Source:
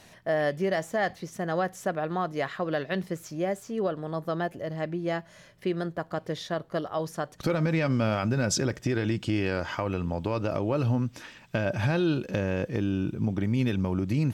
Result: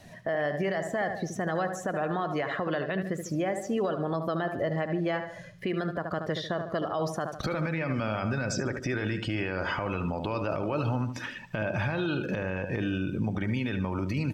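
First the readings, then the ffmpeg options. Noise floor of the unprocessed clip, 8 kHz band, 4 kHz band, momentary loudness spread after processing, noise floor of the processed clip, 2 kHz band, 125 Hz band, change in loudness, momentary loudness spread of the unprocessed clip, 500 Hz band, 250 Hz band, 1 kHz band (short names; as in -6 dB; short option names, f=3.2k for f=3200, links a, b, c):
-54 dBFS, -5.0 dB, -1.5 dB, 3 LU, -44 dBFS, +1.0 dB, -3.0 dB, -1.5 dB, 7 LU, -1.5 dB, -2.0 dB, 0.0 dB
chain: -filter_complex "[0:a]acrossover=split=770|2000[a][b][c];[a]acompressor=threshold=-37dB:ratio=4[d];[b]acompressor=threshold=-39dB:ratio=4[e];[c]acompressor=threshold=-47dB:ratio=4[f];[d][e][f]amix=inputs=3:normalize=0,asplit=2[g][h];[h]aecho=0:1:74|148|222|296|370:0.335|0.161|0.0772|0.037|0.0178[i];[g][i]amix=inputs=2:normalize=0,afftdn=nr=13:nf=-48,acontrast=35,alimiter=level_in=0.5dB:limit=-24dB:level=0:latency=1:release=67,volume=-0.5dB,volume=4dB"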